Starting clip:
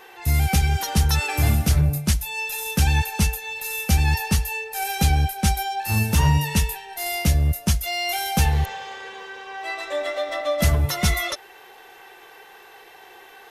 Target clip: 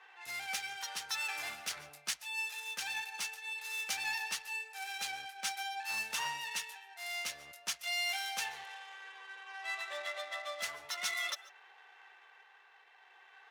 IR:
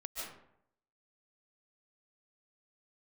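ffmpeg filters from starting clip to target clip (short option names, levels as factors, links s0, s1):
-filter_complex "[0:a]adynamicsmooth=sensitivity=6.5:basefreq=2200,highpass=1200,tremolo=f=0.51:d=0.32,asplit=2[s0][s1];[1:a]atrim=start_sample=2205,atrim=end_sample=6615[s2];[s1][s2]afir=irnorm=-1:irlink=0,volume=0.266[s3];[s0][s3]amix=inputs=2:normalize=0,volume=0.422"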